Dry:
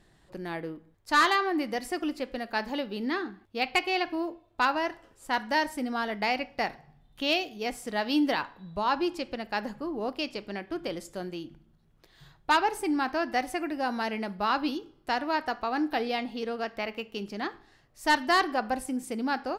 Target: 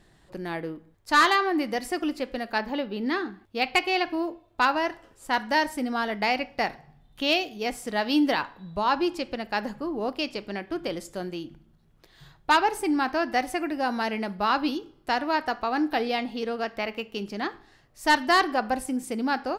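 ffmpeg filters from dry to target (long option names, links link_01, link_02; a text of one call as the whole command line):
ffmpeg -i in.wav -filter_complex "[0:a]asettb=1/sr,asplit=3[link_01][link_02][link_03];[link_01]atrim=end=2.584[link_04];[link_02]atrim=start=2.58:end=3.06,asetpts=PTS-STARTPTS,afade=type=in:duration=0.004:curve=qsin,afade=type=out:start_time=0.476:duration=0.004:curve=qsin,equalizer=frequency=8600:width=0.63:gain=-11[link_05];[link_03]atrim=start=3.056[link_06];[link_04][link_05]acrossfade=duration=0.004:curve1=hsin:curve2=qsin[link_07];[link_07][link_06]acrossfade=duration=0.004:curve1=qsin:curve2=hsin,volume=3dB" out.wav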